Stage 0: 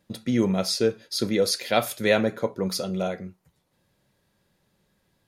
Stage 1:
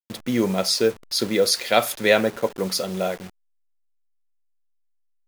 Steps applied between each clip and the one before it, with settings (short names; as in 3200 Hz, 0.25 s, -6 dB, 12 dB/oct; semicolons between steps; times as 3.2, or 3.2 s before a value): level-crossing sampler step -38 dBFS; low shelf 230 Hz -10 dB; gain +5 dB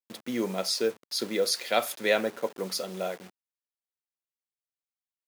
HPF 210 Hz 12 dB/oct; gain -7 dB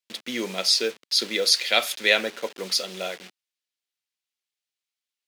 weighting filter D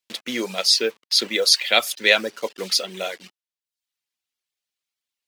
reverb removal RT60 0.61 s; gain +3.5 dB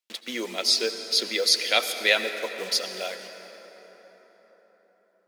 HPF 240 Hz 12 dB/oct; on a send at -8 dB: reverb RT60 4.8 s, pre-delay 68 ms; on the sum: gain -4.5 dB